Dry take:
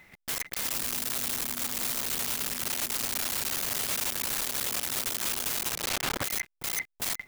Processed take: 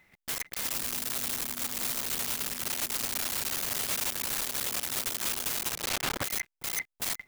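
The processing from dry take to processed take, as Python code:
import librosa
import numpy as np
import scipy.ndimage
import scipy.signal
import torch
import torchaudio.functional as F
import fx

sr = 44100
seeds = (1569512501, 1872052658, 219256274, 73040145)

y = fx.upward_expand(x, sr, threshold_db=-44.0, expansion=1.5)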